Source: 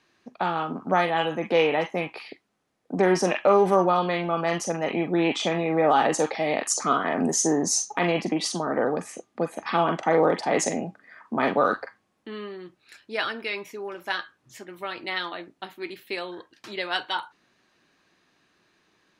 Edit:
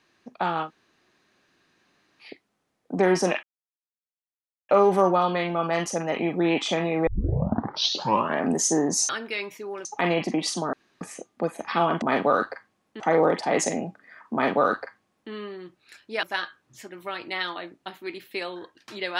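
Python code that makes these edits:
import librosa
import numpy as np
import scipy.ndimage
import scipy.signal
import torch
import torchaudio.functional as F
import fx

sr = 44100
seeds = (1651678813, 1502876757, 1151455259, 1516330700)

y = fx.edit(x, sr, fx.room_tone_fill(start_s=0.66, length_s=1.58, crossfade_s=0.1),
    fx.insert_silence(at_s=3.43, length_s=1.26),
    fx.tape_start(start_s=5.81, length_s=1.37),
    fx.room_tone_fill(start_s=8.71, length_s=0.28),
    fx.duplicate(start_s=11.33, length_s=0.98, to_s=10.0),
    fx.move(start_s=13.23, length_s=0.76, to_s=7.83), tone=tone)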